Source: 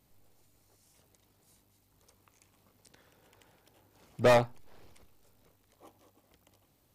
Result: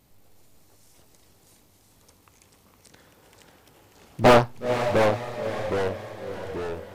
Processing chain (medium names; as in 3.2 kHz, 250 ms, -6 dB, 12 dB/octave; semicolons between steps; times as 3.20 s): echo that smears into a reverb 494 ms, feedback 47%, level -8.5 dB; ever faster or slower copies 182 ms, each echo -2 st, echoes 3, each echo -6 dB; loudspeaker Doppler distortion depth 0.9 ms; trim +7.5 dB